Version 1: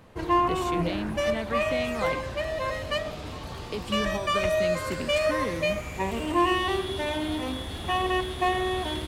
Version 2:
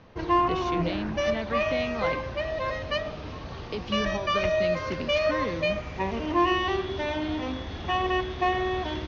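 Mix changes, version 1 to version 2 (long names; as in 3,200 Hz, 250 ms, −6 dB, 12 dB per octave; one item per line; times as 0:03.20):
second sound −5.5 dB
master: add Butterworth low-pass 6,300 Hz 96 dB per octave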